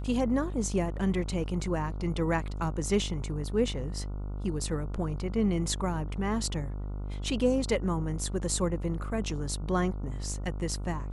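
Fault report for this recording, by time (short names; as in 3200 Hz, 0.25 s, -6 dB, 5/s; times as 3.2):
buzz 50 Hz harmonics 29 -35 dBFS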